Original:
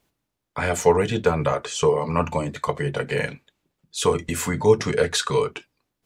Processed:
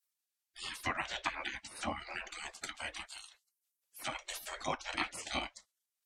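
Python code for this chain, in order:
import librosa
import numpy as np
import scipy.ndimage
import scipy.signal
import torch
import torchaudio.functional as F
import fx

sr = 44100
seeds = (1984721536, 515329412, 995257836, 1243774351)

y = fx.env_lowpass_down(x, sr, base_hz=3000.0, full_db=-15.5)
y = fx.spec_gate(y, sr, threshold_db=-25, keep='weak')
y = fx.pre_emphasis(y, sr, coefficient=0.9, at=(3.05, 3.98), fade=0.02)
y = y * librosa.db_to_amplitude(2.0)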